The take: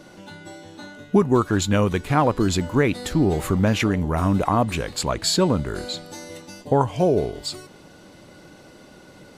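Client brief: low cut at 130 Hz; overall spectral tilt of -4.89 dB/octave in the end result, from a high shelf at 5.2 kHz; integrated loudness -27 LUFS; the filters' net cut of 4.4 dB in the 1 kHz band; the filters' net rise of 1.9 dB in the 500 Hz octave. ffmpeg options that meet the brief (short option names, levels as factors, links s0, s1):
-af "highpass=130,equalizer=f=500:t=o:g=4,equalizer=f=1000:t=o:g=-7.5,highshelf=f=5200:g=4,volume=0.531"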